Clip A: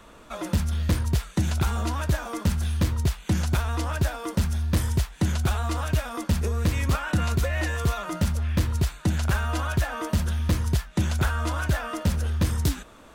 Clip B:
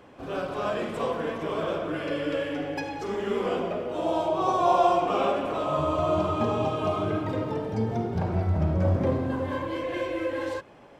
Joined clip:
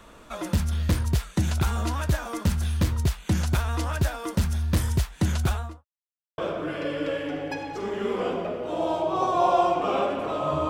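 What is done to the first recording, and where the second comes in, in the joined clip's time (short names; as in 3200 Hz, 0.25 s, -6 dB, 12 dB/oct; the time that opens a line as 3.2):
clip A
5.44–5.85 studio fade out
5.85–6.38 mute
6.38 switch to clip B from 1.64 s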